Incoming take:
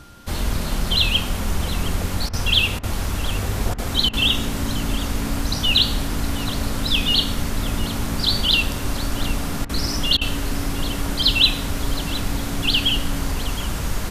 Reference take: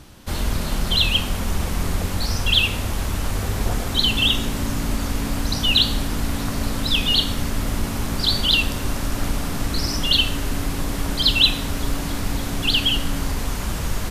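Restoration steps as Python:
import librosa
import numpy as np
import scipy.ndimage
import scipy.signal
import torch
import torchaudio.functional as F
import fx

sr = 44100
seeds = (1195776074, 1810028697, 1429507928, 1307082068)

y = fx.notch(x, sr, hz=1400.0, q=30.0)
y = fx.fix_interpolate(y, sr, at_s=(2.29, 2.79, 3.74, 4.09, 9.65, 10.17), length_ms=42.0)
y = fx.fix_echo_inverse(y, sr, delay_ms=716, level_db=-16.0)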